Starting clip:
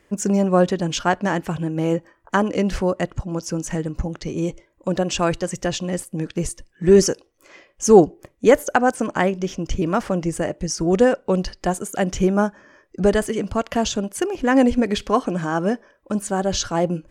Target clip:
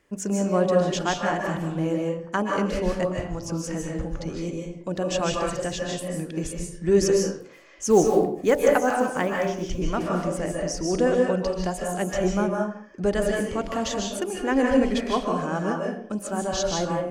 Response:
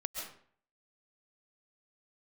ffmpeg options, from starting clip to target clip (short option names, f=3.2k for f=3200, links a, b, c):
-filter_complex "[0:a]bandreject=f=47.87:t=h:w=4,bandreject=f=95.74:t=h:w=4,bandreject=f=143.61:t=h:w=4,bandreject=f=191.48:t=h:w=4,bandreject=f=239.35:t=h:w=4,bandreject=f=287.22:t=h:w=4,bandreject=f=335.09:t=h:w=4,bandreject=f=382.96:t=h:w=4,bandreject=f=430.83:t=h:w=4,bandreject=f=478.7:t=h:w=4,bandreject=f=526.57:t=h:w=4,bandreject=f=574.44:t=h:w=4,bandreject=f=622.31:t=h:w=4,bandreject=f=670.18:t=h:w=4,bandreject=f=718.05:t=h:w=4,bandreject=f=765.92:t=h:w=4,bandreject=f=813.79:t=h:w=4,bandreject=f=861.66:t=h:w=4,bandreject=f=909.53:t=h:w=4,asettb=1/sr,asplit=3[a][b][c];[a]atrim=end=7.904[d];[b]atrim=start=7.9:end=9.67,asetpts=PTS-STARTPTS,afade=t=in:d=0.004:c=qsin,afade=t=out:st=1.766:d=0.004:c=qsin,acrusher=bits=8:mode=log:mix=0:aa=0.000001[e];[c]atrim=start=9.666[f];[d][e]acrossfade=d=0.004:c1=hsin:c2=qsin[g];[g][f]acrossfade=d=0.004:c1=qsin:c2=hsin[h];[1:a]atrim=start_sample=2205,afade=t=out:st=0.44:d=0.01,atrim=end_sample=19845,asetrate=39690,aresample=44100[i];[h][i]afir=irnorm=-1:irlink=0,volume=-5dB"